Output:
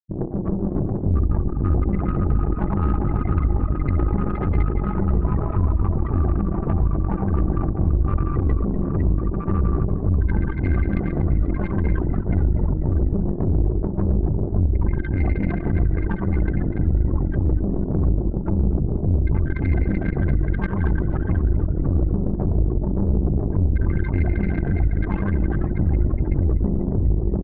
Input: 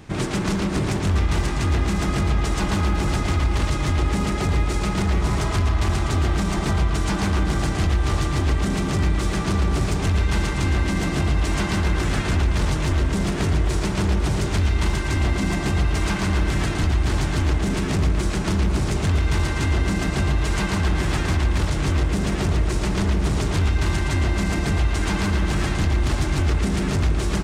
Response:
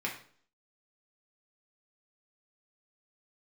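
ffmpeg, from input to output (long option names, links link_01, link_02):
-filter_complex "[0:a]acrossover=split=1500[link_01][link_02];[link_02]aeval=exprs='(mod(21.1*val(0)+1,2)-1)/21.1':channel_layout=same[link_03];[link_01][link_03]amix=inputs=2:normalize=0,afftfilt=real='re*gte(hypot(re,im),0.126)':imag='im*gte(hypot(re,im),0.126)':win_size=1024:overlap=0.75,aeval=exprs='0.282*(cos(1*acos(clip(val(0)/0.282,-1,1)))-cos(1*PI/2))+0.00398*(cos(3*acos(clip(val(0)/0.282,-1,1)))-cos(3*PI/2))+0.0398*(cos(4*acos(clip(val(0)/0.282,-1,1)))-cos(4*PI/2))+0.0158*(cos(7*acos(clip(val(0)/0.282,-1,1)))-cos(7*PI/2))':channel_layout=same,asplit=2[link_04][link_05];[link_05]aeval=exprs='clip(val(0),-1,0.0944)':channel_layout=same,volume=-9dB[link_06];[link_04][link_06]amix=inputs=2:normalize=0,highshelf=frequency=8900:gain=7,asplit=8[link_07][link_08][link_09][link_10][link_11][link_12][link_13][link_14];[link_08]adelay=245,afreqshift=-58,volume=-15dB[link_15];[link_09]adelay=490,afreqshift=-116,volume=-19.2dB[link_16];[link_10]adelay=735,afreqshift=-174,volume=-23.3dB[link_17];[link_11]adelay=980,afreqshift=-232,volume=-27.5dB[link_18];[link_12]adelay=1225,afreqshift=-290,volume=-31.6dB[link_19];[link_13]adelay=1470,afreqshift=-348,volume=-35.8dB[link_20];[link_14]adelay=1715,afreqshift=-406,volume=-39.9dB[link_21];[link_07][link_15][link_16][link_17][link_18][link_19][link_20][link_21]amix=inputs=8:normalize=0,volume=-2dB"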